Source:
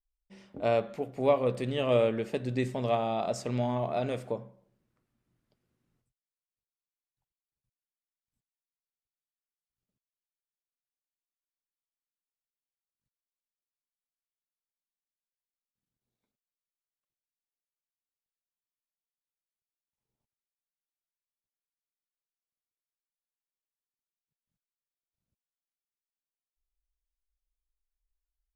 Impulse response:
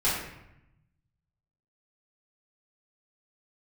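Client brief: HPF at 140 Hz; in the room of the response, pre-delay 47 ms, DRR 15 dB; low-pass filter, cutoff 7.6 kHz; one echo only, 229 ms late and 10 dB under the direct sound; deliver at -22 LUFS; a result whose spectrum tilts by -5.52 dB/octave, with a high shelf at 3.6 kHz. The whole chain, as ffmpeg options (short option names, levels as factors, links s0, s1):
-filter_complex "[0:a]highpass=140,lowpass=7600,highshelf=f=3600:g=-3.5,aecho=1:1:229:0.316,asplit=2[s0][s1];[1:a]atrim=start_sample=2205,adelay=47[s2];[s1][s2]afir=irnorm=-1:irlink=0,volume=0.0447[s3];[s0][s3]amix=inputs=2:normalize=0,volume=2.51"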